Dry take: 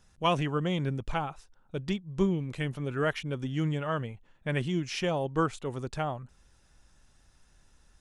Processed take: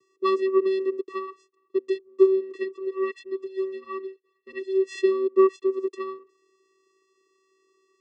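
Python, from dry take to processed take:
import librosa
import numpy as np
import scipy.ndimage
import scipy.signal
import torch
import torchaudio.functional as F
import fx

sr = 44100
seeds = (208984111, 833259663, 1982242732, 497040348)

y = fx.vocoder(x, sr, bands=8, carrier='square', carrier_hz=382.0)
y = fx.low_shelf(y, sr, hz=200.0, db=5.0)
y = fx.comb_cascade(y, sr, direction='rising', hz=1.5, at=(2.63, 4.79), fade=0.02)
y = y * 10.0 ** (6.5 / 20.0)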